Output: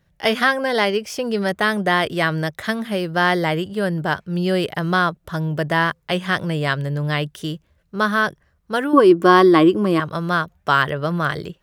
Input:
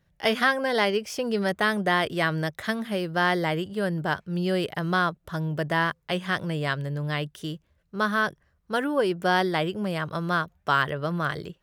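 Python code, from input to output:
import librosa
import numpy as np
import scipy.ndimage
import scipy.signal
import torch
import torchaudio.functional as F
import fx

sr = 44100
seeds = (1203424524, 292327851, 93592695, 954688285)

p1 = fx.rider(x, sr, range_db=10, speed_s=2.0)
p2 = x + F.gain(torch.from_numpy(p1), 1.0).numpy()
p3 = fx.small_body(p2, sr, hz=(320.0, 1100.0), ring_ms=45, db=17, at=(8.93, 10.0))
y = F.gain(torch.from_numpy(p3), -1.5).numpy()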